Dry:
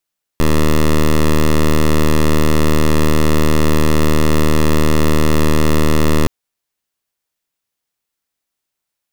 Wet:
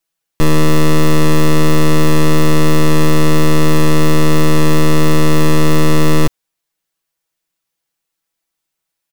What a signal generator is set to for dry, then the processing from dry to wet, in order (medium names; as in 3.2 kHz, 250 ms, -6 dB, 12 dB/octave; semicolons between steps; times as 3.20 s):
pulse 77.1 Hz, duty 10% -10.5 dBFS 5.87 s
comb 6.1 ms, depth 80%